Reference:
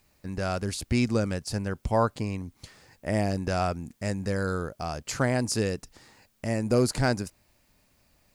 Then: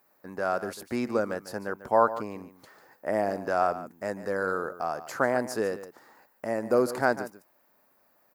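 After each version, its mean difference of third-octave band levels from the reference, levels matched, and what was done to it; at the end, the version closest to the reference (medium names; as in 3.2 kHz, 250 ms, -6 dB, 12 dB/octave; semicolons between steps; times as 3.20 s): 7.0 dB: Bessel high-pass 500 Hz, order 2; high-order bell 4.7 kHz -15 dB 2.5 oct; on a send: delay 145 ms -14 dB; on the sum: trim +5 dB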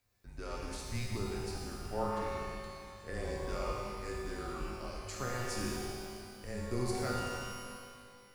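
11.0 dB: feedback comb 170 Hz, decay 2 s, mix 90%; frequency shift -130 Hz; pitch-shifted reverb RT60 2 s, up +12 st, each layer -8 dB, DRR -1 dB; trim +4 dB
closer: first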